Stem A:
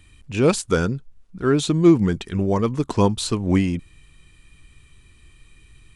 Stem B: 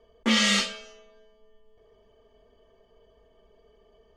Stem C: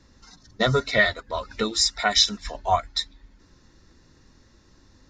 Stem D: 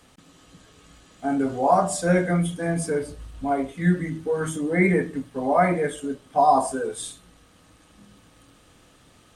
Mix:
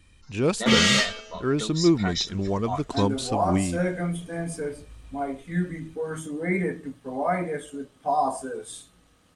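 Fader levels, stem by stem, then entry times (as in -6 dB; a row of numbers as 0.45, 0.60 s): -6.0, +2.5, -9.5, -6.0 dB; 0.00, 0.40, 0.00, 1.70 s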